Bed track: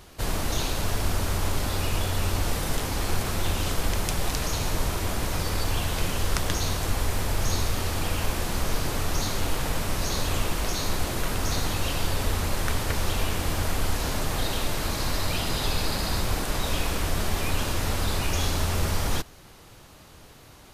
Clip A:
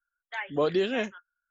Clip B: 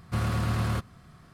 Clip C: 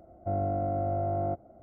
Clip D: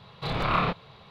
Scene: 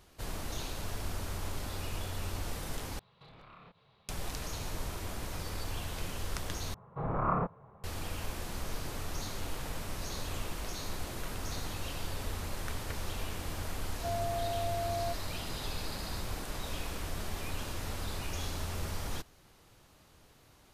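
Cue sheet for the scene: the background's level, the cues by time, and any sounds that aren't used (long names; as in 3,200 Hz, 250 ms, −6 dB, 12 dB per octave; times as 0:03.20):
bed track −11.5 dB
0:02.99: overwrite with D −15.5 dB + downward compressor, threshold −37 dBFS
0:06.74: overwrite with D −4 dB + low-pass filter 1,300 Hz 24 dB per octave
0:13.78: mix in C −5 dB + expanding power law on the bin magnitudes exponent 2.6
not used: A, B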